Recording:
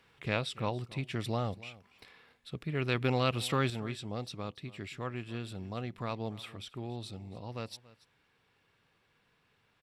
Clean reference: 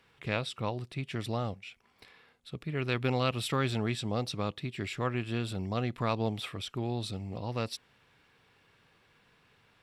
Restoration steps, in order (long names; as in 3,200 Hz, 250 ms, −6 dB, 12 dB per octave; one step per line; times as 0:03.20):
echo removal 283 ms −20 dB
level correction +6.5 dB, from 0:03.70